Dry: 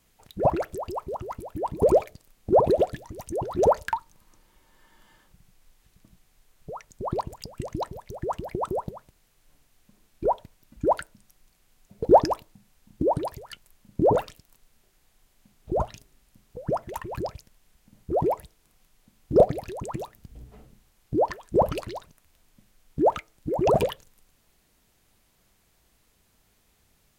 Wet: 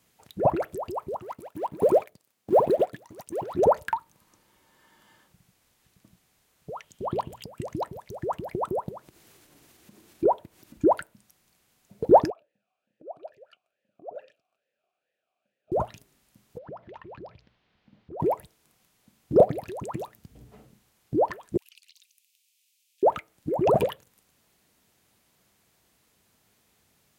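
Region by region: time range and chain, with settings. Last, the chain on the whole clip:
1.19–3.54 G.711 law mismatch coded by A + HPF 200 Hz 6 dB/oct
6.76–7.44 bell 3100 Hz +12 dB 0.46 oct + notches 60/120/180/240 Hz
8.91–10.88 bell 340 Hz +9.5 dB 0.54 oct + upward compressor, threshold -42 dBFS
12.3–15.72 compressor, threshold -28 dBFS + vowel sweep a-e 2.3 Hz
16.58–18.2 notches 60/120/180 Hz + compressor 2.5:1, threshold -45 dBFS + inverse Chebyshev low-pass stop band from 9300 Hz, stop band 50 dB
21.57–23.03 elliptic high-pass 2500 Hz, stop band 80 dB + compressor, threshold -51 dBFS
whole clip: HPF 100 Hz 12 dB/oct; dynamic EQ 5600 Hz, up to -8 dB, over -53 dBFS, Q 0.94

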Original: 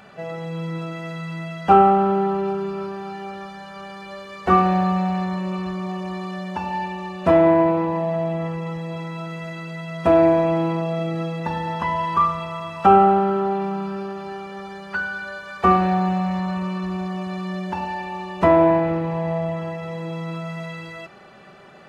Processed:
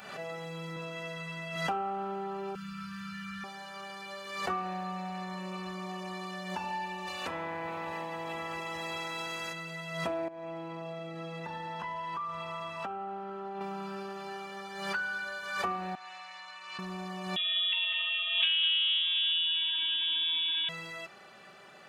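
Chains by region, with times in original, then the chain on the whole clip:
0.75–1.56 high shelf 5300 Hz -6 dB + doubler 14 ms -4 dB
2.55–3.44 elliptic band-stop 210–1300 Hz + low shelf 140 Hz +11 dB + three-band squash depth 100%
7.06–9.52 spectral limiter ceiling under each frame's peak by 17 dB + compressor, threshold -25 dBFS
10.28–13.61 compressor 10:1, threshold -26 dBFS + LPF 3700 Hz 6 dB/oct
15.95–16.79 Bessel high-pass 2100 Hz + air absorption 72 m
17.36–20.69 echo 0.2 s -5.5 dB + inverted band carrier 3600 Hz
whole clip: compressor 4:1, threshold -25 dBFS; tilt +2.5 dB/oct; backwards sustainer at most 54 dB/s; gain -6.5 dB

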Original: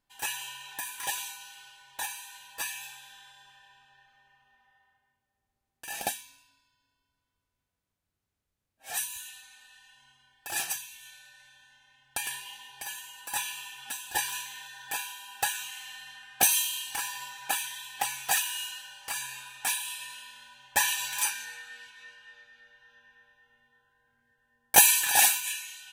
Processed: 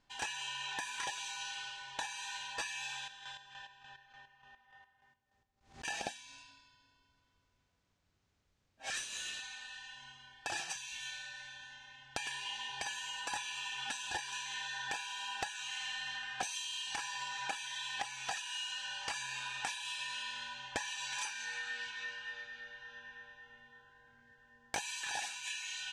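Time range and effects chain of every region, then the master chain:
2.96–5.85 chopper 3.4 Hz, depth 65%, duty 40% + backwards sustainer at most 130 dB/s
8.9–9.4 steep high-pass 1100 Hz 96 dB/oct + companded quantiser 4-bit
whole clip: LPF 6800 Hz 24 dB/oct; compressor 16:1, threshold -44 dBFS; gain +7.5 dB

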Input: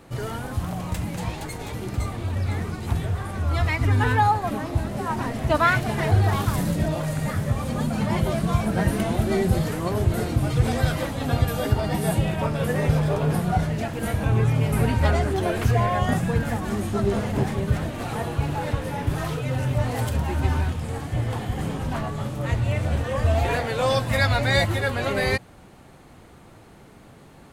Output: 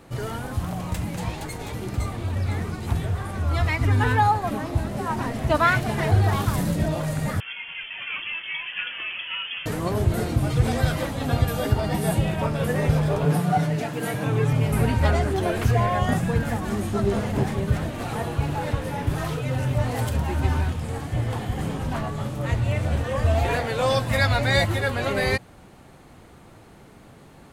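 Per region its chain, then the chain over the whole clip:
7.4–9.66 three-band isolator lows -19 dB, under 510 Hz, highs -15 dB, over 2300 Hz + inverted band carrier 3300 Hz
13.25–14.53 HPF 130 Hz 24 dB/oct + comb 6.8 ms, depth 55%
whole clip: dry

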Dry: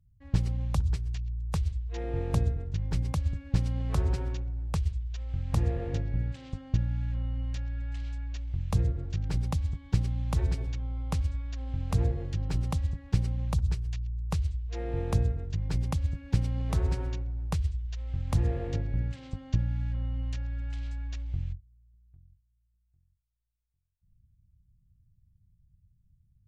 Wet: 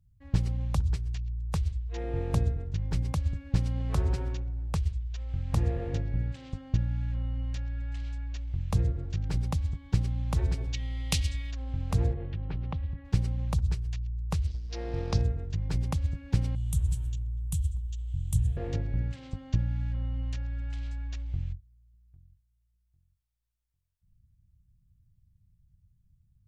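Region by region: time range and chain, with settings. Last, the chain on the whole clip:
10.73–11.5 resonant high shelf 1900 Hz +14 dB, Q 1.5 + whine 1900 Hz -54 dBFS
12.13–13.05 LPF 3400 Hz 24 dB/oct + compressor 2:1, threshold -31 dBFS
14.47–15.22 G.711 law mismatch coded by A + synth low-pass 5100 Hz, resonance Q 3.7
16.55–18.57 EQ curve 140 Hz 0 dB, 230 Hz -12 dB, 350 Hz -27 dB, 2200 Hz -17 dB, 3200 Hz -1 dB, 4900 Hz -10 dB, 7800 Hz +11 dB + narrowing echo 0.244 s, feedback 46%, band-pass 470 Hz, level -13 dB
whole clip: dry

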